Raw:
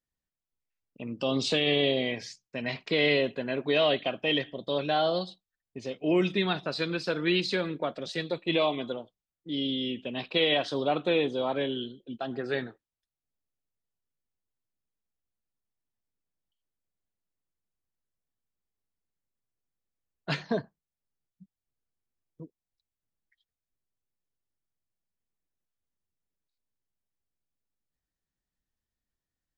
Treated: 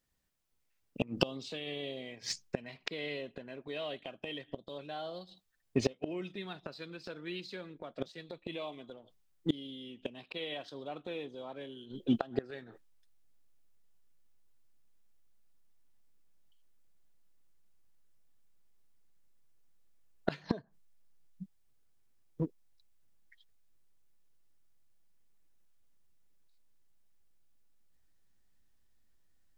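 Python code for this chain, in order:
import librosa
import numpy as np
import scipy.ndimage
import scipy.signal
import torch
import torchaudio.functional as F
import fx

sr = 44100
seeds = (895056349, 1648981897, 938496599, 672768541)

p1 = fx.backlash(x, sr, play_db=-37.5)
p2 = x + (p1 * 10.0 ** (-8.0 / 20.0))
p3 = fx.gate_flip(p2, sr, shuts_db=-24.0, range_db=-27)
y = p3 * 10.0 ** (9.0 / 20.0)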